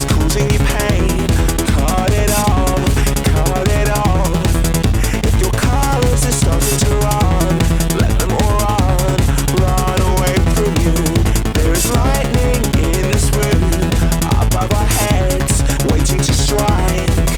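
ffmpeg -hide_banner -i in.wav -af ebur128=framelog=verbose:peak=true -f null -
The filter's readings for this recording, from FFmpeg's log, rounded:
Integrated loudness:
  I:         -14.7 LUFS
  Threshold: -24.7 LUFS
Loudness range:
  LRA:         0.4 LU
  Threshold: -34.7 LUFS
  LRA low:   -14.9 LUFS
  LRA high:  -14.5 LUFS
True peak:
  Peak:       -3.4 dBFS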